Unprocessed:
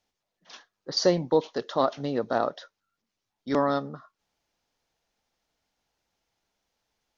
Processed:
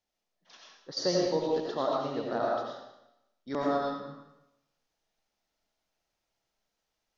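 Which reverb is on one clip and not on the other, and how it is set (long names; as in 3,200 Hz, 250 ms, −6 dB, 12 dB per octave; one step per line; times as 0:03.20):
comb and all-pass reverb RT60 0.88 s, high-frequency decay 1×, pre-delay 50 ms, DRR −3 dB
level −8.5 dB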